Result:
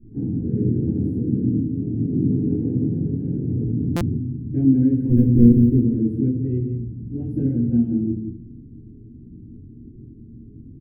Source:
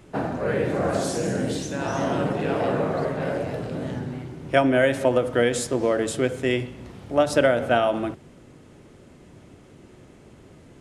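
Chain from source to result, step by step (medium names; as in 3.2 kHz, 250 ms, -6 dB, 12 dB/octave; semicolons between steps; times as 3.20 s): 5.09–5.78 s: square wave that keeps the level; inverse Chebyshev band-stop 590–7100 Hz, stop band 40 dB; distance through air 300 m; echo from a far wall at 30 m, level -8 dB; reverberation RT60 0.35 s, pre-delay 4 ms, DRR -9.5 dB; 1.70–2.32 s: time-frequency box 720–1900 Hz -29 dB; 1.18–1.89 s: treble shelf 5.2 kHz -7.5 dB; buffer glitch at 3.96 s, samples 256, times 8; 3.50–4.18 s: level flattener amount 70%; trim -6 dB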